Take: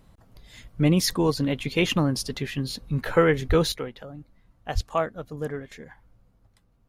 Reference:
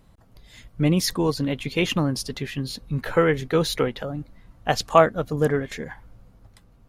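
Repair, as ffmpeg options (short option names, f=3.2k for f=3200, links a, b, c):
-filter_complex "[0:a]asplit=3[a][b][c];[a]afade=t=out:st=3.48:d=0.02[d];[b]highpass=f=140:w=0.5412,highpass=f=140:w=1.3066,afade=t=in:st=3.48:d=0.02,afade=t=out:st=3.6:d=0.02[e];[c]afade=t=in:st=3.6:d=0.02[f];[d][e][f]amix=inputs=3:normalize=0,asplit=3[g][h][i];[g]afade=t=out:st=4.74:d=0.02[j];[h]highpass=f=140:w=0.5412,highpass=f=140:w=1.3066,afade=t=in:st=4.74:d=0.02,afade=t=out:st=4.86:d=0.02[k];[i]afade=t=in:st=4.86:d=0.02[l];[j][k][l]amix=inputs=3:normalize=0,asetnsamples=n=441:p=0,asendcmd='3.72 volume volume 10dB',volume=0dB"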